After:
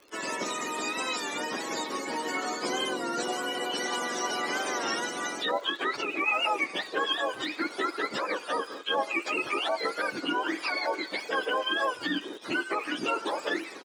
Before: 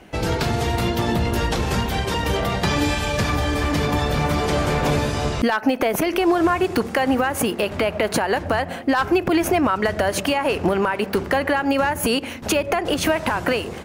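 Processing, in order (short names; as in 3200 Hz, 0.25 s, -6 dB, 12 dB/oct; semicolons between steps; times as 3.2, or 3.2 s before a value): spectrum mirrored in octaves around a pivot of 930 Hz; in parallel at -7 dB: bit-crush 6-bit; on the sum: LPF 8100 Hz 24 dB/oct; harmoniser -4 st -17 dB; HPF 300 Hz 24 dB/oct; crackle 74/s -32 dBFS; record warp 33 1/3 rpm, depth 100 cents; gain -9 dB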